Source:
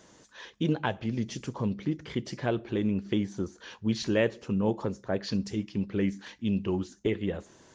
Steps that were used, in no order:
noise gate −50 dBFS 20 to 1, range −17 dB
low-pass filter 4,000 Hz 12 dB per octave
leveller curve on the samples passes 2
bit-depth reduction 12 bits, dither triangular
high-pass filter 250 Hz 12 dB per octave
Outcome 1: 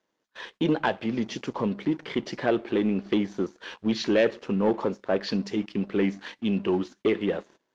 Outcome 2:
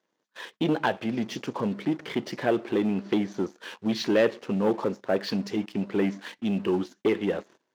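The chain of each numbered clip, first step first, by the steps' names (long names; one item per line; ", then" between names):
high-pass filter, then leveller curve on the samples, then bit-depth reduction, then noise gate, then low-pass filter
bit-depth reduction, then low-pass filter, then leveller curve on the samples, then high-pass filter, then noise gate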